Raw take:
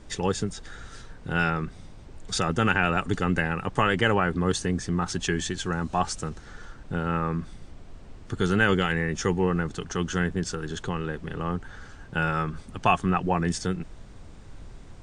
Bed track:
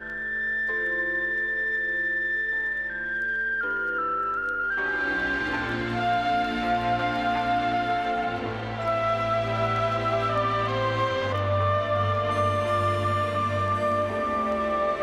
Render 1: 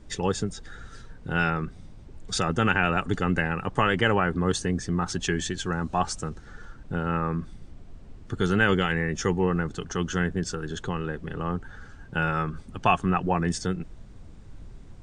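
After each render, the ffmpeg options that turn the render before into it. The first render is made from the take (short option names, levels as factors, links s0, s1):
-af "afftdn=nr=6:nf=-46"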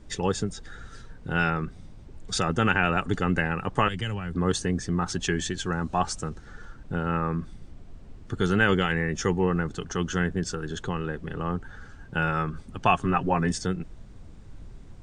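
-filter_complex "[0:a]asettb=1/sr,asplit=3[s0][s1][s2];[s0]atrim=end=3.884[s3];[s1]atrim=start=3.88:end=4.35,asetpts=PTS-STARTPTS,afade=t=in:d=0.004:c=qsin,afade=t=out:st=0.466:d=0.004:c=qsin,acrossover=split=170|3000[s4][s5][s6];[s5]acompressor=threshold=0.00631:ratio=2.5:attack=3.2:release=140:knee=2.83:detection=peak[s7];[s4][s7][s6]amix=inputs=3:normalize=0[s8];[s2]atrim=start=4.346[s9];[s3][s8]acrossfade=d=0.004:c1=hsin:c2=qsin[s10];[s10][s9]acrossfade=d=0.004:c1=qsin:c2=hsin,asettb=1/sr,asplit=3[s11][s12][s13];[s11]atrim=end=13.004[s14];[s12]atrim=start=13:end=13.51,asetpts=PTS-STARTPTS,afade=t=in:d=0.004:c=qsin,afade=t=out:st=0.506:d=0.004:c=qsin,aecho=1:1:7.5:0.56,atrim=end_sample=22491[s15];[s13]atrim=start=13.506[s16];[s14][s15]acrossfade=d=0.004:c1=hsin:c2=qsin[s17];[s17][s16]acrossfade=d=0.004:c1=qsin:c2=hsin"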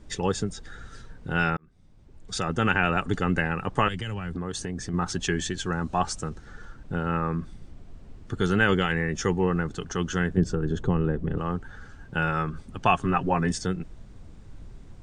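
-filter_complex "[0:a]asettb=1/sr,asplit=3[s0][s1][s2];[s0]atrim=end=4.014[s3];[s1]atrim=start=4.01:end=4.94,asetpts=PTS-STARTPTS,afade=t=in:d=0.004:c=qsin,afade=t=out:st=0.926:d=0.004:c=qsin,acompressor=threshold=0.0447:ratio=6:attack=3.2:release=140:knee=1:detection=peak[s4];[s2]atrim=start=4.936[s5];[s3][s4]acrossfade=d=0.004:c1=hsin:c2=qsin[s6];[s6][s5]acrossfade=d=0.004:c1=qsin:c2=hsin,asettb=1/sr,asplit=3[s7][s8][s9];[s7]atrim=end=10.374[s10];[s8]atrim=start=10.37:end=11.38,asetpts=PTS-STARTPTS,afade=t=in:d=0.004:c=qsin,afade=t=out:st=1.006:d=0.004:c=qsin,tiltshelf=f=920:g=8[s11];[s9]atrim=start=11.376[s12];[s10][s11]acrossfade=d=0.004:c1=hsin:c2=qsin[s13];[s13][s12]acrossfade=d=0.004:c1=qsin:c2=hsin,asplit=2[s14][s15];[s14]atrim=end=1.57,asetpts=PTS-STARTPTS,afade=t=out:st=1.566:d=0.004:c=hsin[s16];[s15]atrim=start=1.57,asetpts=PTS-STARTPTS,afade=t=in:d=1.17[s17];[s16][s17]concat=n=2:v=0:a=1"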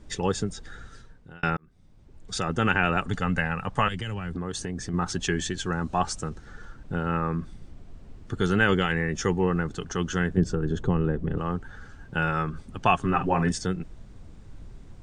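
-filter_complex "[0:a]asettb=1/sr,asplit=3[s0][s1][s2];[s0]atrim=end=3.074[s3];[s1]atrim=start=3.07:end=3.92,asetpts=PTS-STARTPTS,afade=t=in:d=0.004:c=qsin,afade=t=out:st=0.846:d=0.004:c=qsin,equalizer=f=350:t=o:w=0.45:g=-13.5[s4];[s2]atrim=start=3.916[s5];[s3][s4]acrossfade=d=0.004:c1=hsin:c2=qsin[s6];[s6][s5]acrossfade=d=0.004:c1=qsin:c2=hsin,asettb=1/sr,asplit=3[s7][s8][s9];[s7]atrim=end=13.084[s10];[s8]atrim=start=13.08:end=13.49,asetpts=PTS-STARTPTS,afade=t=in:d=0.004:c=qsin,afade=t=out:st=0.406:d=0.004:c=qsin,asplit=2[s11][s12];[s12]adelay=47,volume=0.316[s13];[s11][s13]amix=inputs=2:normalize=0,atrim=end_sample=18081[s14];[s9]atrim=start=13.486[s15];[s10][s14]acrossfade=d=0.004:c1=hsin:c2=qsin[s16];[s16][s15]acrossfade=d=0.004:c1=qsin:c2=hsin,asplit=2[s17][s18];[s17]atrim=end=1.43,asetpts=PTS-STARTPTS,afade=t=out:st=0.75:d=0.68[s19];[s18]atrim=start=1.43,asetpts=PTS-STARTPTS,afade=t=in:d=0.004:c=hsin[s20];[s19][s20]concat=n=2:v=0:a=1"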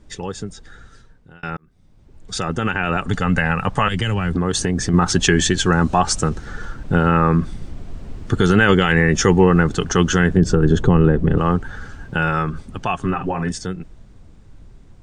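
-af "alimiter=limit=0.168:level=0:latency=1:release=106,dynaudnorm=f=290:g=21:m=5.62"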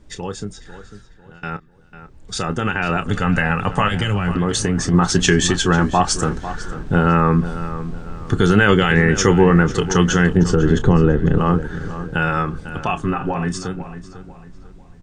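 -filter_complex "[0:a]asplit=2[s0][s1];[s1]adelay=29,volume=0.251[s2];[s0][s2]amix=inputs=2:normalize=0,asplit=2[s3][s4];[s4]adelay=498,lowpass=f=3200:p=1,volume=0.237,asplit=2[s5][s6];[s6]adelay=498,lowpass=f=3200:p=1,volume=0.37,asplit=2[s7][s8];[s8]adelay=498,lowpass=f=3200:p=1,volume=0.37,asplit=2[s9][s10];[s10]adelay=498,lowpass=f=3200:p=1,volume=0.37[s11];[s3][s5][s7][s9][s11]amix=inputs=5:normalize=0"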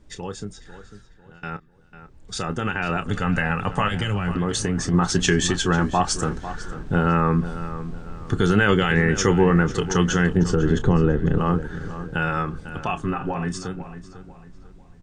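-af "volume=0.596"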